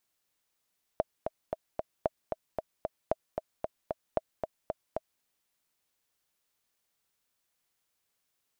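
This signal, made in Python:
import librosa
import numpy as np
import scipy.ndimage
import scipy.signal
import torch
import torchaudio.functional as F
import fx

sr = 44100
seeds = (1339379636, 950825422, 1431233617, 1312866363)

y = fx.click_track(sr, bpm=227, beats=4, bars=4, hz=637.0, accent_db=5.5, level_db=-13.0)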